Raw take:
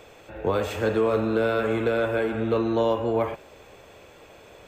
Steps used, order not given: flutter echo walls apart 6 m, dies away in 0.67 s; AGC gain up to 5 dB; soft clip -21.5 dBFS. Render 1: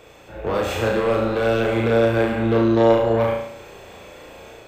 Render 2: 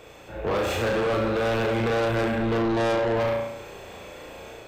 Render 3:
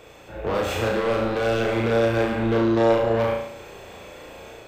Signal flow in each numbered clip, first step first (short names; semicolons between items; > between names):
soft clip > AGC > flutter echo; AGC > flutter echo > soft clip; AGC > soft clip > flutter echo